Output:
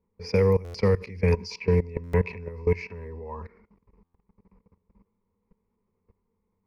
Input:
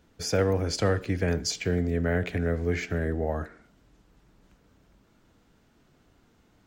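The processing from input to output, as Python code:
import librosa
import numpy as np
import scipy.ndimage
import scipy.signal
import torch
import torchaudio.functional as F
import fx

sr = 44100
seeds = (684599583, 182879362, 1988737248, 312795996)

y = fx.env_lowpass(x, sr, base_hz=1100.0, full_db=-20.5)
y = fx.ripple_eq(y, sr, per_octave=0.86, db=17)
y = fx.level_steps(y, sr, step_db=19)
y = fx.small_body(y, sr, hz=(970.0, 2600.0), ring_ms=45, db=17, at=(1.32, 3.43))
y = fx.buffer_glitch(y, sr, at_s=(0.64, 2.03, 4.04), block=512, repeats=8)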